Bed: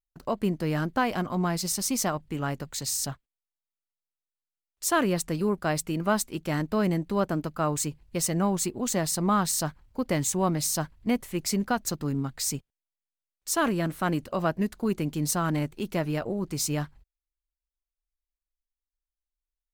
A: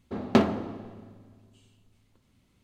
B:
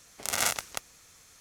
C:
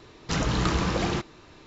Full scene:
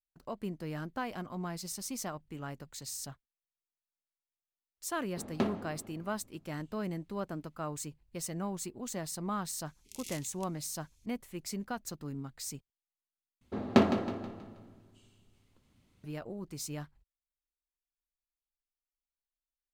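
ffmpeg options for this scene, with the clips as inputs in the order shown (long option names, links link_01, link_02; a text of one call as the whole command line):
ffmpeg -i bed.wav -i cue0.wav -i cue1.wav -filter_complex "[1:a]asplit=2[link_01][link_02];[0:a]volume=-11.5dB[link_03];[2:a]asuperstop=centerf=960:order=12:qfactor=0.5[link_04];[link_02]aecho=1:1:160|320|480|640|800:0.316|0.136|0.0585|0.0251|0.0108[link_05];[link_03]asplit=2[link_06][link_07];[link_06]atrim=end=13.414[link_08];[link_05]atrim=end=2.63,asetpts=PTS-STARTPTS,volume=-2.5dB[link_09];[link_07]atrim=start=16.036[link_10];[link_01]atrim=end=2.63,asetpts=PTS-STARTPTS,volume=-11.5dB,afade=type=in:duration=0.004:curve=hsin,afade=type=out:start_time=2.626:duration=0.004:curve=hsin,adelay=222705S[link_11];[link_04]atrim=end=1.4,asetpts=PTS-STARTPTS,volume=-17dB,afade=type=in:duration=0.004:curve=hsin,afade=type=out:start_time=1.396:duration=0.004:curve=hsin,adelay=9660[link_12];[link_08][link_09]acrossfade=duration=0.004:curve1=hsin:curve2=hsin[link_13];[link_13][link_10]acrossfade=duration=0.004:curve1=hsin:curve2=hsin[link_14];[link_14][link_11][link_12]amix=inputs=3:normalize=0" out.wav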